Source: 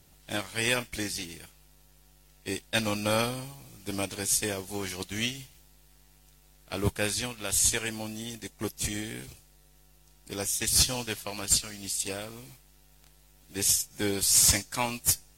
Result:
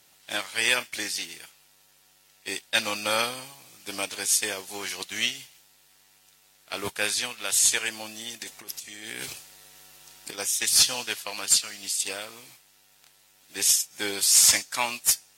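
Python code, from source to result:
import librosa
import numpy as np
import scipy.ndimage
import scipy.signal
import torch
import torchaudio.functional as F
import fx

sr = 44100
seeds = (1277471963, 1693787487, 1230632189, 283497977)

y = fx.over_compress(x, sr, threshold_db=-43.0, ratio=-1.0, at=(8.4, 10.37), fade=0.02)
y = fx.highpass(y, sr, hz=1300.0, slope=6)
y = fx.high_shelf(y, sr, hz=6900.0, db=-6.0)
y = y * librosa.db_to_amplitude(7.0)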